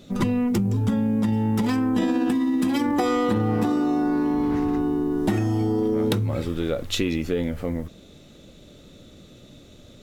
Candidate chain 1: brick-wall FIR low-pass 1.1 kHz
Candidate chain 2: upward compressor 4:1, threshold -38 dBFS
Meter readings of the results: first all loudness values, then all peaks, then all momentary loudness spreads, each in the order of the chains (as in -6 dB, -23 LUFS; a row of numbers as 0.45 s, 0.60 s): -23.5 LUFS, -23.5 LUFS; -9.5 dBFS, -8.5 dBFS; 5 LU, 4 LU